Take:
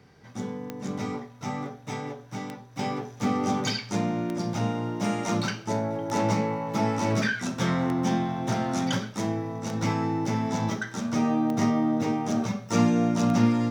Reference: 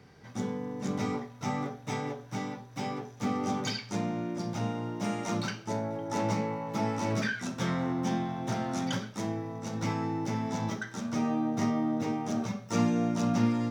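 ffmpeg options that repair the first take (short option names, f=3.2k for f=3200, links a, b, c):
-af "adeclick=t=4,asetnsamples=n=441:p=0,asendcmd='2.79 volume volume -5dB',volume=0dB"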